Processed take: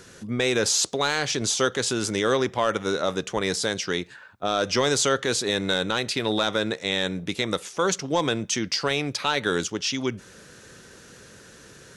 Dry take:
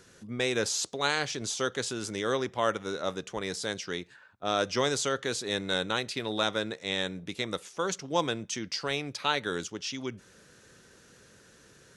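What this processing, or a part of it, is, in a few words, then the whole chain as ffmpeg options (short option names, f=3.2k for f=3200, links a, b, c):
soft clipper into limiter: -af "asoftclip=type=tanh:threshold=-14.5dB,alimiter=limit=-21dB:level=0:latency=1:release=80,volume=9dB"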